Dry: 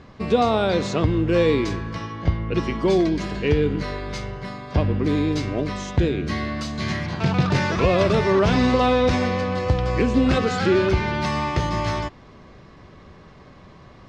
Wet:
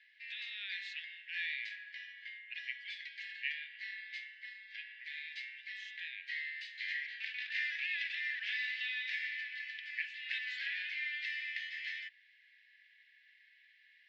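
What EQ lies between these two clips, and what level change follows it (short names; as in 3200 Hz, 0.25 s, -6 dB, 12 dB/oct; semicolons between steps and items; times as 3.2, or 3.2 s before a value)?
Chebyshev high-pass 1700 Hz, order 8; air absorption 420 m; 0.0 dB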